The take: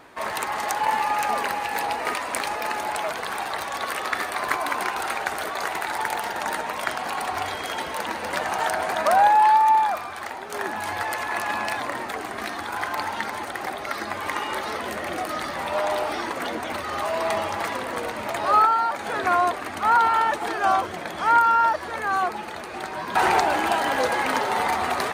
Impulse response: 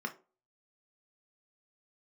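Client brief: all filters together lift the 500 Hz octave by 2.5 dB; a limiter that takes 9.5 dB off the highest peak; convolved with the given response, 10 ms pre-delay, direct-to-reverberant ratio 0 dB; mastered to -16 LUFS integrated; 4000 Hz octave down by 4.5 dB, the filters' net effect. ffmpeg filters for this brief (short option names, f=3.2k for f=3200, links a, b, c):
-filter_complex "[0:a]equalizer=f=500:t=o:g=3.5,equalizer=f=4k:t=o:g=-6,alimiter=limit=-15dB:level=0:latency=1,asplit=2[a][b];[1:a]atrim=start_sample=2205,adelay=10[c];[b][c]afir=irnorm=-1:irlink=0,volume=-2.5dB[d];[a][d]amix=inputs=2:normalize=0,volume=7dB"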